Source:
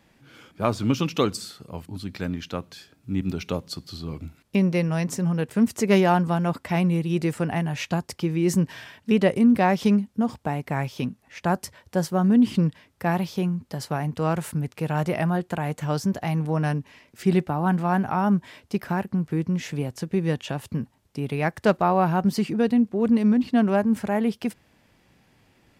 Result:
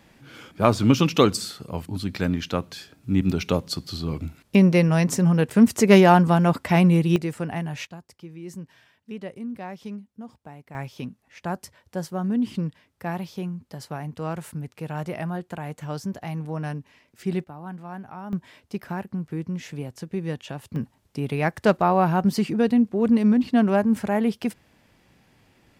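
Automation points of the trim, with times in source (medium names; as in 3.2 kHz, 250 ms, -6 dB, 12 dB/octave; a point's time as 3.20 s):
+5 dB
from 7.16 s -3.5 dB
from 7.87 s -16 dB
from 10.75 s -6 dB
from 17.44 s -14.5 dB
from 18.33 s -5 dB
from 20.76 s +1 dB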